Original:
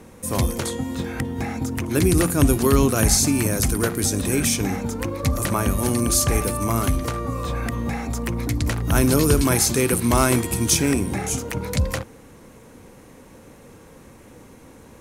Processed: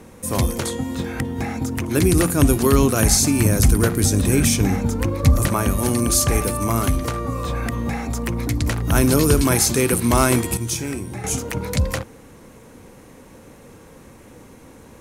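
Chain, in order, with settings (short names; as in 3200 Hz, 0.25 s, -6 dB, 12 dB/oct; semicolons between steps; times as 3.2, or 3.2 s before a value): 3.4–5.48 low shelf 170 Hz +8.5 dB; 10.57–11.24 resonator 120 Hz, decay 0.24 s, harmonics odd, mix 70%; gain +1.5 dB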